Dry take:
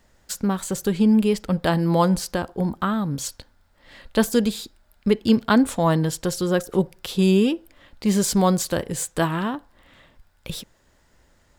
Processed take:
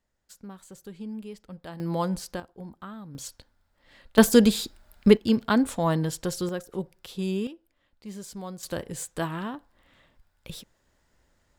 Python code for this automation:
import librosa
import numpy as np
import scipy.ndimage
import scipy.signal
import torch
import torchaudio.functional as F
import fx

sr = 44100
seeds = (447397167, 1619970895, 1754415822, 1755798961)

y = fx.gain(x, sr, db=fx.steps((0.0, -20.0), (1.8, -9.0), (2.4, -17.5), (3.15, -9.0), (4.18, 3.0), (5.17, -5.0), (6.49, -11.5), (7.47, -19.5), (8.63, -8.0)))